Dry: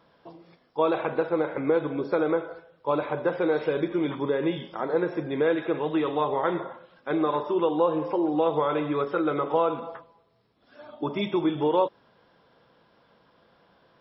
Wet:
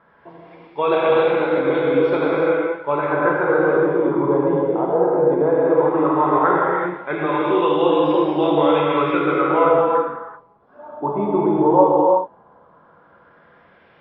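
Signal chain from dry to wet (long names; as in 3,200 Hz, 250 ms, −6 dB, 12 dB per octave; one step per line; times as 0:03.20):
reverb whose tail is shaped and stops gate 410 ms flat, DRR −4.5 dB
auto-filter low-pass sine 0.15 Hz 810–3,300 Hz
level +1.5 dB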